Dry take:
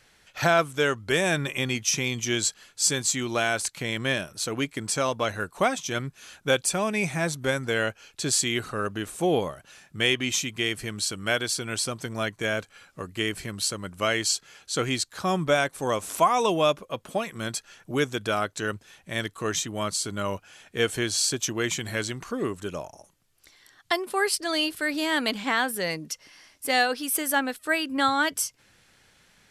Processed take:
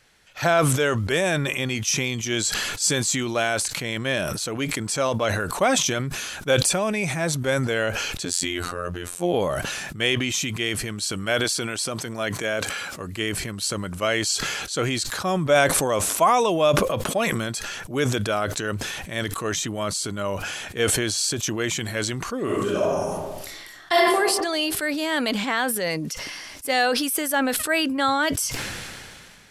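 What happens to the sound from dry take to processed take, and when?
8.25–9.34 robotiser 87.8 Hz
11.44–13 HPF 170 Hz 6 dB/oct
22.44–24.15 reverb throw, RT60 0.91 s, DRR -6.5 dB
whole clip: dynamic EQ 580 Hz, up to +4 dB, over -38 dBFS, Q 3.2; sustainer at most 26 dB/s

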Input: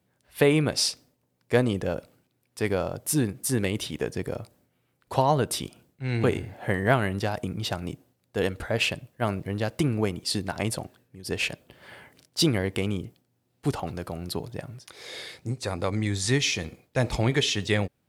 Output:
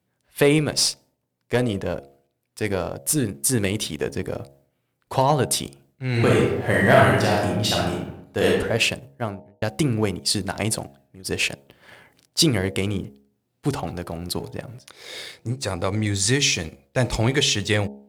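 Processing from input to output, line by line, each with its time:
0.58–3.43 tube stage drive 13 dB, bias 0.5
6.11–8.47 reverb throw, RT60 0.87 s, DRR -4 dB
9–9.62 studio fade out
whole clip: dynamic EQ 8100 Hz, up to +5 dB, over -45 dBFS, Q 0.74; sample leveller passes 1; de-hum 69.11 Hz, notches 13

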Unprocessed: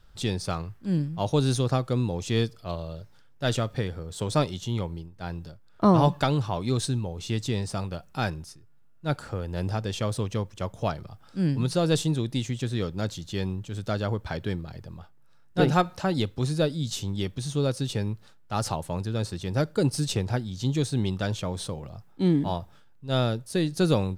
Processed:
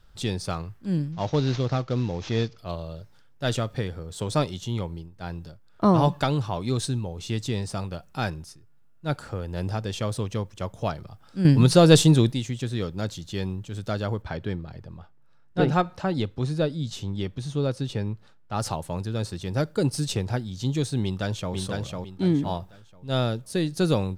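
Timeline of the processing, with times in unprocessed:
1.12–2.58 CVSD 32 kbps
11.45–12.32 gain +9 dB
14.22–18.6 LPF 3200 Hz 6 dB/oct
21.03–21.54 echo throw 0.5 s, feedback 30%, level -3 dB

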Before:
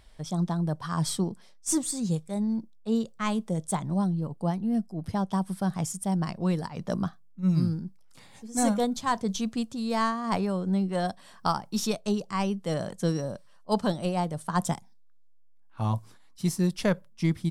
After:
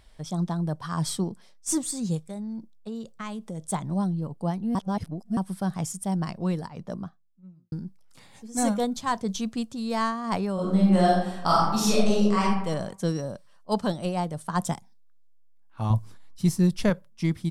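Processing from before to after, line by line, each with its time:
2.27–3.62 compressor, threshold -31 dBFS
4.75–5.37 reverse
6.27–7.72 studio fade out
10.54–12.41 reverb throw, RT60 0.88 s, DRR -6 dB
15.9–16.9 low shelf 150 Hz +11 dB

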